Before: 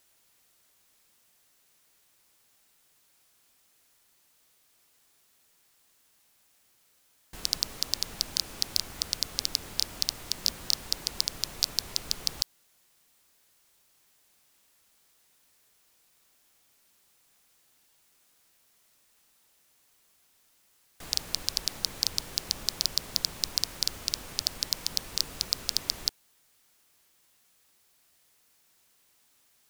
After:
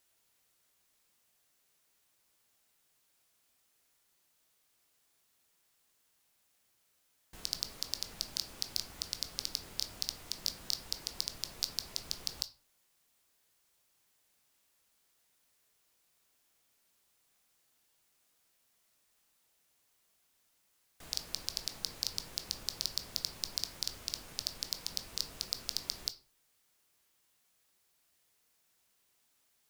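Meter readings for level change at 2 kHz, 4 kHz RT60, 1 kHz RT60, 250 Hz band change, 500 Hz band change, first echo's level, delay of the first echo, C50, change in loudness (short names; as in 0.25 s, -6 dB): -7.5 dB, 0.25 s, 0.45 s, -7.5 dB, -7.0 dB, none, none, 15.0 dB, -7.5 dB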